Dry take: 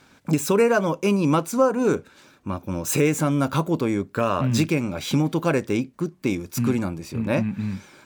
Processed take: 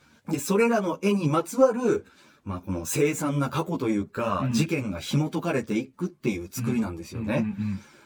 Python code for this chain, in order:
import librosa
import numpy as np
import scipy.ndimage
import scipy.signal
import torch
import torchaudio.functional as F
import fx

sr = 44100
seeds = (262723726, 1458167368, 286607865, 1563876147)

y = fx.spec_quant(x, sr, step_db=15)
y = fx.ensemble(y, sr)